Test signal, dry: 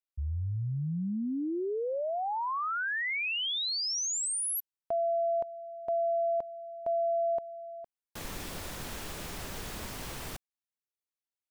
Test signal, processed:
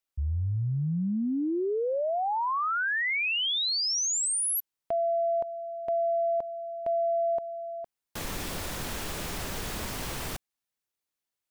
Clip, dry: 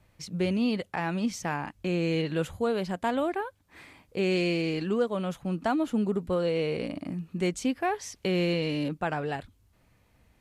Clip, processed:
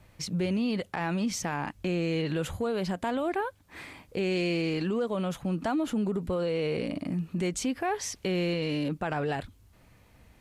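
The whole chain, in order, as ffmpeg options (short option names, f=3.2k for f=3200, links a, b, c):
-af "acompressor=threshold=-30dB:ratio=6:attack=0.48:release=112:knee=6:detection=peak,volume=6dB"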